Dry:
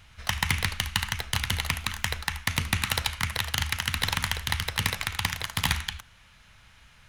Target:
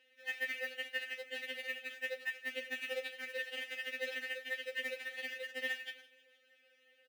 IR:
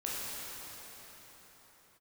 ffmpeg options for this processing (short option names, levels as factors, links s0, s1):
-filter_complex "[0:a]highshelf=f=3200:g=7.5,acrossover=split=110|1800|3300[s0][s1][s2][s3];[s3]aeval=exprs='0.106*(abs(mod(val(0)/0.106+3,4)-2)-1)':c=same[s4];[s0][s1][s2][s4]amix=inputs=4:normalize=0,asplit=3[s5][s6][s7];[s5]bandpass=f=530:t=q:w=8,volume=1[s8];[s6]bandpass=f=1840:t=q:w=8,volume=0.501[s9];[s7]bandpass=f=2480:t=q:w=8,volume=0.355[s10];[s8][s9][s10]amix=inputs=3:normalize=0,equalizer=f=360:w=1.6:g=8.5,bandreject=f=1100:w=6.6,aecho=1:1:159|318|477|636:0.112|0.055|0.0269|0.0132,acrusher=bits=4:mode=log:mix=0:aa=0.000001,highpass=75,afftfilt=real='re*3.46*eq(mod(b,12),0)':imag='im*3.46*eq(mod(b,12),0)':win_size=2048:overlap=0.75,volume=1.12"